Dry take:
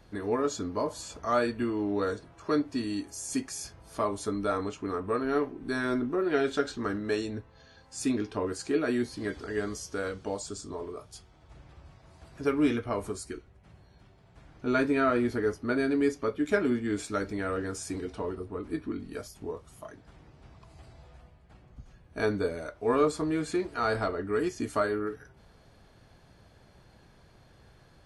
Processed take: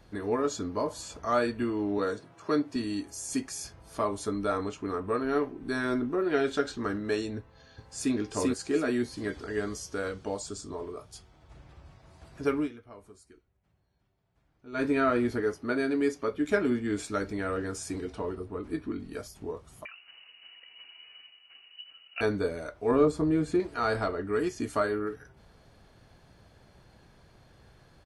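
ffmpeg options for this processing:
-filter_complex "[0:a]asettb=1/sr,asplit=3[a][b][c];[a]atrim=end=1.984[d];[b]atrim=start=1.98:end=2.76,asetpts=PTS-STARTPTS,afade=t=in:d=0.004:c=qsin,afade=t=out:st=0.776:d=0.004:c=qsin,highpass=f=110:w=0.5412,highpass=f=110:w=1.3066[e];[c]atrim=start=2.756[f];[d][e]acrossfade=d=0.004:c1=hsin:c2=qsin[g];[g][f]acrossfade=d=0.004:c1=qsin:c2=hsin,asplit=2[h][i];[i]afade=t=in:st=7.39:d=0.01,afade=t=out:st=8.14:d=0.01,aecho=0:1:390|780|1170|1560:0.891251|0.222813|0.0557032|0.0139258[j];[h][j]amix=inputs=2:normalize=0,asettb=1/sr,asplit=3[k][l][m];[k]atrim=end=15.414[n];[l]atrim=start=15.41:end=16.32,asetpts=PTS-STARTPTS,afade=t=in:d=0.004:c=qsin,afade=t=out:st=0.906:d=0.004:c=qsin,lowshelf=f=110:g=-10.5[o];[m]atrim=start=16.316[p];[n][o]acrossfade=d=0.004:c1=hsin:c2=qsin[q];[q][p]acrossfade=d=0.004:c1=qsin:c2=hsin,asettb=1/sr,asplit=3[r][s][t];[r]atrim=end=19.854[u];[s]atrim=start=19.85:end=22.21,asetpts=PTS-STARTPTS,afade=t=in:d=0.004:c=qsin,afade=t=out:st=2.356:d=0.004:c=qsin,lowpass=f=2.6k:t=q:w=0.5098,lowpass=f=2.6k:t=q:w=0.6013,lowpass=f=2.6k:t=q:w=0.9,lowpass=f=2.6k:t=q:w=2.563,afreqshift=-3000[v];[t]atrim=start=22.206[w];[u][v]acrossfade=d=0.004:c1=hsin:c2=qsin[x];[x][w]acrossfade=d=0.004:c1=qsin:c2=hsin,asettb=1/sr,asplit=3[y][z][aa];[y]atrim=end=22.914[ab];[z]atrim=start=22.91:end=23.6,asetpts=PTS-STARTPTS,afade=t=in:d=0.004:c=qsin,afade=t=out:st=0.686:d=0.004:c=qsin,tiltshelf=f=640:g=6[ac];[aa]atrim=start=23.596[ad];[ab][ac]acrossfade=d=0.004:c1=hsin:c2=qsin[ae];[ae][ad]acrossfade=d=0.004:c1=qsin:c2=hsin,asplit=3[af][ag][ah];[af]atrim=end=12.69,asetpts=PTS-STARTPTS,afade=t=out:st=12.56:d=0.13:silence=0.133352[ai];[ag]atrim=start=12.69:end=14.72,asetpts=PTS-STARTPTS,volume=-17.5dB[aj];[ah]atrim=start=14.72,asetpts=PTS-STARTPTS,afade=t=in:d=0.13:silence=0.133352[ak];[ai][aj][ak]concat=n=3:v=0:a=1"

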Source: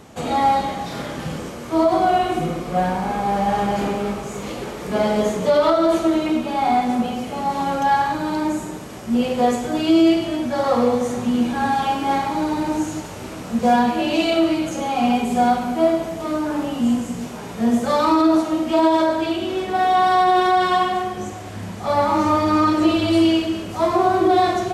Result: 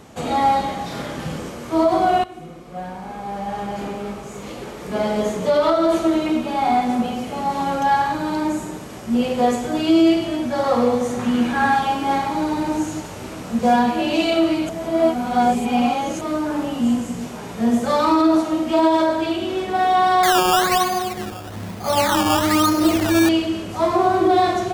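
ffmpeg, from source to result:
-filter_complex "[0:a]asettb=1/sr,asplit=3[a][b][c];[a]atrim=end=11.194[d];[b]atrim=start=11.19:end=11.79,asetpts=PTS-STARTPTS,afade=t=in:d=0.004:c=qsin,afade=t=out:st=0.596:d=0.004:c=qsin,equalizer=f=1.6k:w=1:g=7.5[e];[c]atrim=start=11.786[f];[d][e]acrossfade=d=0.004:c1=hsin:c2=qsin[g];[g][f]acrossfade=d=0.004:c1=qsin:c2=hsin,asettb=1/sr,asplit=3[h][i][j];[h]atrim=end=20.234[k];[i]atrim=start=20.23:end=23.29,asetpts=PTS-STARTPTS,afade=t=in:d=0.004:c=qsin,afade=t=out:st=3.056:d=0.004:c=qsin,acrusher=samples=15:mix=1:aa=0.000001:lfo=1:lforange=15:lforate=1.1[l];[j]atrim=start=23.286[m];[k][l]acrossfade=d=0.004:c1=hsin:c2=qsin[n];[n][m]acrossfade=d=0.004:c1=qsin:c2=hsin,asplit=4[o][p][q][r];[o]atrim=end=2.24,asetpts=PTS-STARTPTS,afade=t=out:st=2.236:d=0.004:c=hsin:silence=0.149624[s];[p]atrim=start=2.24:end=14.692,asetpts=PTS-STARTPTS,afade=t=in:d=3.84:silence=0.149624[t];[q]atrim=start=14.688:end=16.212,asetpts=PTS-STARTPTS,areverse[u];[r]atrim=start=16.208[v];[s][t]concat=n=2:v=0:a=1[w];[w][u]acrossfade=d=0.004:c1=hsin:c2=hsin[x];[x][v]acrossfade=d=0.004:c1=hsin:c2=hsin"

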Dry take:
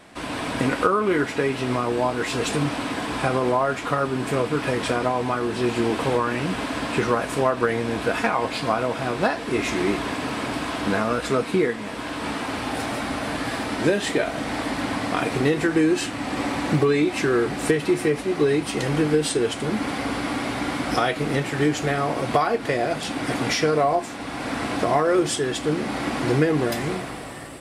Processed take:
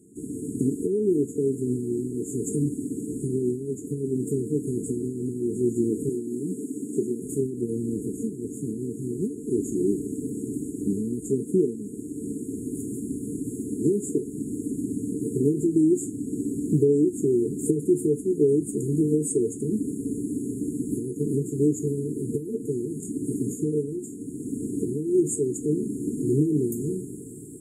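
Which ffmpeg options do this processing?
-filter_complex "[0:a]asettb=1/sr,asplit=3[a][b][c];[a]atrim=end=6.094[d];[b]atrim=start=6.09:end=7.22,asetpts=PTS-STARTPTS,afade=t=in:d=0.004:c=qsin,afade=t=out:st=1.126:d=0.004:c=qsin,highpass=210[e];[c]atrim=start=7.216[f];[d][e]acrossfade=d=0.004:c1=hsin:c2=qsin[g];[g][f]acrossfade=d=0.004:c1=qsin:c2=hsin,afftfilt=real='re*(1-between(b*sr/4096,460,6600))':imag='im*(1-between(b*sr/4096,460,6600))':win_size=4096:overlap=0.75,highpass=110"

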